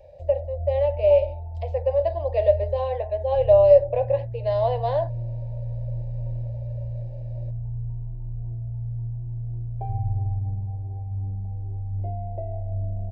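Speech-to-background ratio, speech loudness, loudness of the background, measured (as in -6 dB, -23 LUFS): 10.0 dB, -22.0 LUFS, -32.0 LUFS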